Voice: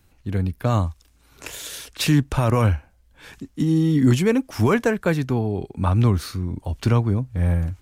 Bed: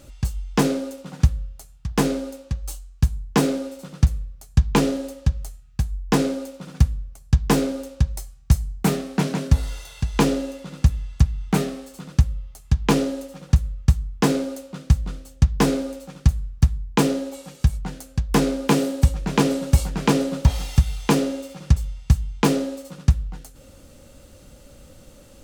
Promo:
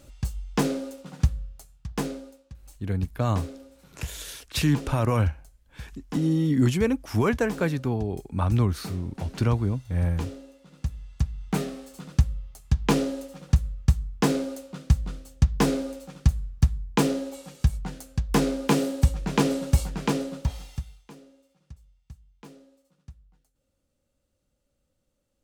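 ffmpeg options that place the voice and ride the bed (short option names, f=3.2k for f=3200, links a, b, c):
-filter_complex "[0:a]adelay=2550,volume=-4.5dB[a];[1:a]volume=9.5dB,afade=t=out:st=1.6:d=0.84:silence=0.223872,afade=t=in:st=10.6:d=1.4:silence=0.188365,afade=t=out:st=19.64:d=1.41:silence=0.0530884[b];[a][b]amix=inputs=2:normalize=0"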